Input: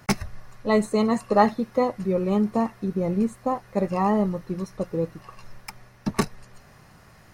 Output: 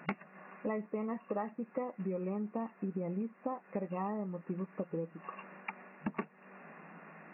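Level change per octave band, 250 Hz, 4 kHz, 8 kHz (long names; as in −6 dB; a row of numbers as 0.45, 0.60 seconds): −14.0 dB, below −25 dB, can't be measured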